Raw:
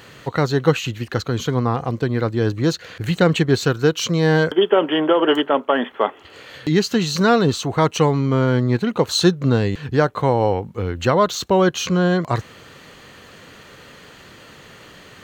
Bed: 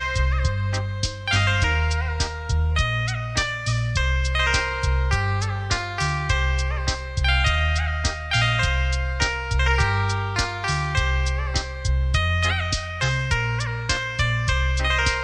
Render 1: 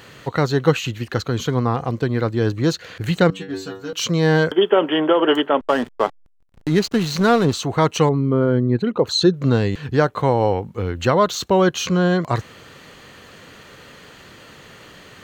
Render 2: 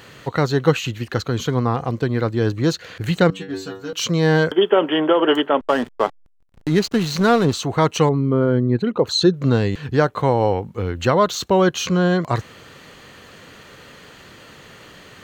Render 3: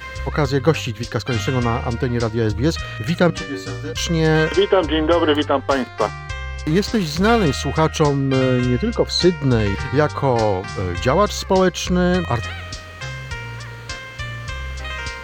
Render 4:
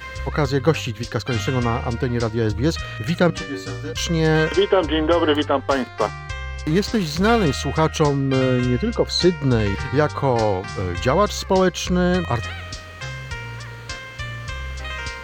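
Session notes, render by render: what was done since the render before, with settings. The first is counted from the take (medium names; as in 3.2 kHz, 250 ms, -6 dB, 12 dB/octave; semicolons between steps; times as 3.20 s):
3.30–3.93 s: inharmonic resonator 94 Hz, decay 0.44 s, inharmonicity 0.002; 5.60–7.53 s: hysteresis with a dead band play -24 dBFS; 8.09–9.34 s: resonances exaggerated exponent 1.5
no audible change
add bed -7 dB
trim -1.5 dB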